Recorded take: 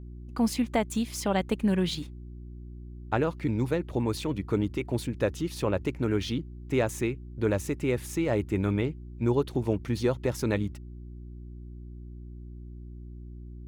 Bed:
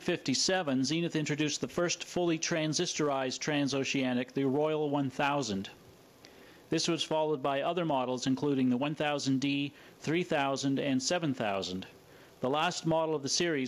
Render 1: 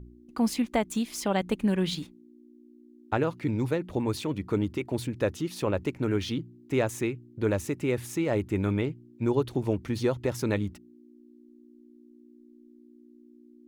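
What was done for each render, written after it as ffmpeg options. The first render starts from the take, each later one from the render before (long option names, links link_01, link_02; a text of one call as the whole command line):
ffmpeg -i in.wav -af "bandreject=frequency=60:width_type=h:width=4,bandreject=frequency=120:width_type=h:width=4,bandreject=frequency=180:width_type=h:width=4" out.wav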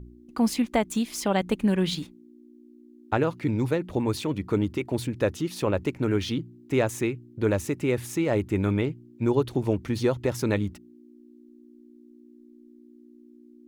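ffmpeg -i in.wav -af "volume=2.5dB" out.wav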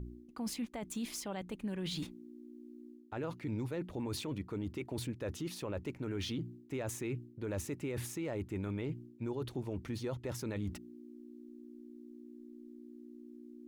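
ffmpeg -i in.wav -af "areverse,acompressor=threshold=-32dB:ratio=10,areverse,alimiter=level_in=6.5dB:limit=-24dB:level=0:latency=1:release=14,volume=-6.5dB" out.wav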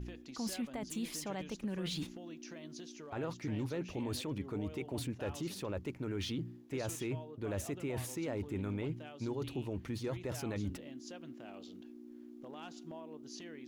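ffmpeg -i in.wav -i bed.wav -filter_complex "[1:a]volume=-20dB[link_01];[0:a][link_01]amix=inputs=2:normalize=0" out.wav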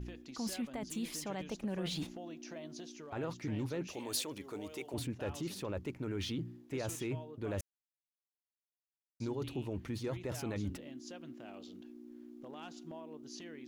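ffmpeg -i in.wav -filter_complex "[0:a]asettb=1/sr,asplit=3[link_01][link_02][link_03];[link_01]atrim=end=1.494[link_04];[link_02]atrim=start=1.49:end=2.9,asetpts=PTS-STARTPTS,afade=type=in:duration=0.004:curve=qsin,afade=type=out:start_time=1.406:duration=0.004:curve=qsin,equalizer=frequency=690:width_type=o:width=0.77:gain=8[link_05];[link_03]atrim=start=2.896[link_06];[link_04][link_05]acrossfade=duration=0.004:curve1=hsin:curve2=qsin[link_07];[link_07][link_06]acrossfade=duration=0.004:curve1=qsin:curve2=hsin,asettb=1/sr,asplit=3[link_08][link_09][link_10];[link_08]atrim=end=3.874[link_11];[link_09]atrim=start=3.87:end=4.94,asetpts=PTS-STARTPTS,afade=type=in:duration=0.004:curve=qsin,afade=type=out:start_time=1.066:duration=0.004:curve=qsin,bass=frequency=250:gain=-14,treble=frequency=4000:gain=10[link_12];[link_10]atrim=start=4.936[link_13];[link_11][link_12]acrossfade=duration=0.004:curve1=hsin:curve2=qsin[link_14];[link_14][link_13]acrossfade=duration=0.004:curve1=qsin:curve2=hsin,asplit=3[link_15][link_16][link_17];[link_15]atrim=end=7.61,asetpts=PTS-STARTPTS,afade=type=out:start_time=7.606:duration=0.004:curve=hsin[link_18];[link_16]atrim=start=7.61:end=9.2,asetpts=PTS-STARTPTS,volume=0[link_19];[link_17]atrim=start=9.2,asetpts=PTS-STARTPTS,afade=type=in:duration=0.004:curve=hsin[link_20];[link_18][link_19][link_20]concat=n=3:v=0:a=1" out.wav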